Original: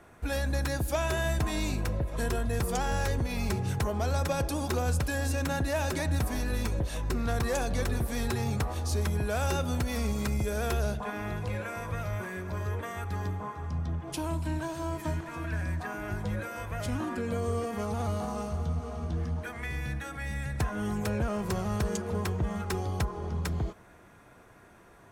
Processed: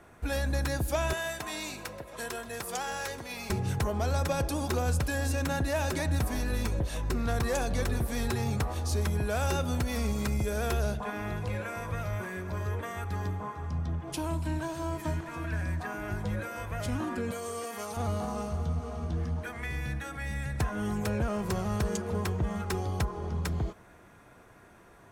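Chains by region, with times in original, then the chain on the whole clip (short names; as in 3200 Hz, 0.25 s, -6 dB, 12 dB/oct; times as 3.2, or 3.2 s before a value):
1.13–3.5 HPF 780 Hz 6 dB/oct + echo 0.129 s -16.5 dB
17.31–17.97 HPF 720 Hz 6 dB/oct + high shelf 4900 Hz +9 dB
whole clip: dry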